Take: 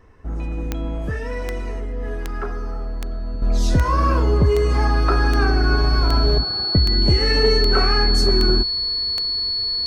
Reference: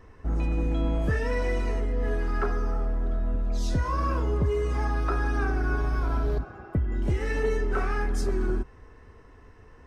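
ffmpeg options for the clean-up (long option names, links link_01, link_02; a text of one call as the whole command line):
ffmpeg -i in.wav -af "adeclick=threshold=4,bandreject=frequency=4400:width=30,asetnsamples=nb_out_samples=441:pad=0,asendcmd='3.42 volume volume -9dB',volume=0dB" out.wav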